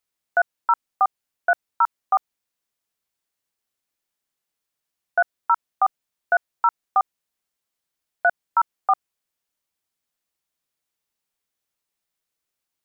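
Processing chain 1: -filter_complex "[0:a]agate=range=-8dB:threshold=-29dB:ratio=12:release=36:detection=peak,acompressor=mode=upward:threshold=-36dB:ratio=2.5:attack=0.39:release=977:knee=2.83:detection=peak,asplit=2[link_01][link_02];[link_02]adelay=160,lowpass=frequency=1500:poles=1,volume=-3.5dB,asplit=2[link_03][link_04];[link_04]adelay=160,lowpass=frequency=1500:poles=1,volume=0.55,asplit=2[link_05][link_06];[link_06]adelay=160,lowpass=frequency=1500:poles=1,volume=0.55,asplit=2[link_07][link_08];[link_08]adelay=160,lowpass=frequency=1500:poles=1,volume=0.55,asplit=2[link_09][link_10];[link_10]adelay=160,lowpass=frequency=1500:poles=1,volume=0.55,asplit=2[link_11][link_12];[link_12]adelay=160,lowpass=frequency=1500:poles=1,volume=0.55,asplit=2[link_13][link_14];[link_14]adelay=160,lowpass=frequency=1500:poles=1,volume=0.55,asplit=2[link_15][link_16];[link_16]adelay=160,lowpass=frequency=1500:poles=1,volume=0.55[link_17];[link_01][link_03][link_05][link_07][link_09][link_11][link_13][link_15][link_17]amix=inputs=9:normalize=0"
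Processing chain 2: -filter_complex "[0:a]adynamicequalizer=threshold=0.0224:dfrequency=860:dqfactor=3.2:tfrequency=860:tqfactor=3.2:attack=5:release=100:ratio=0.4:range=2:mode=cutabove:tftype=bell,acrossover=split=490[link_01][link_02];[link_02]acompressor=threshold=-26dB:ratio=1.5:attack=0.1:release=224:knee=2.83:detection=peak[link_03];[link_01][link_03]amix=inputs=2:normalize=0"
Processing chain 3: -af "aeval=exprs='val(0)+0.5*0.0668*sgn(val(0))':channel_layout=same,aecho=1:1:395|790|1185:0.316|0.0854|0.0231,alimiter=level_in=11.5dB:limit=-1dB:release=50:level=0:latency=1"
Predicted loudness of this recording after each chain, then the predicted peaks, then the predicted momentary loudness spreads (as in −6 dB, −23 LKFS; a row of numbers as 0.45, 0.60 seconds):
−23.5, −28.5, −13.5 LKFS; −7.5, −14.0, −1.0 dBFS; 14, 3, 4 LU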